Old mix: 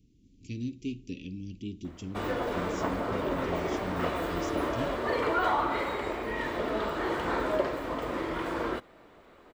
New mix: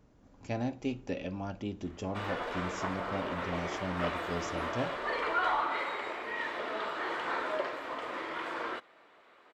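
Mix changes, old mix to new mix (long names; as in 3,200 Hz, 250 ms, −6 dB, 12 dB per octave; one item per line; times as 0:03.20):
speech: remove inverse Chebyshev band-stop filter 640–1,500 Hz, stop band 50 dB
background: add resonant band-pass 2,100 Hz, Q 0.52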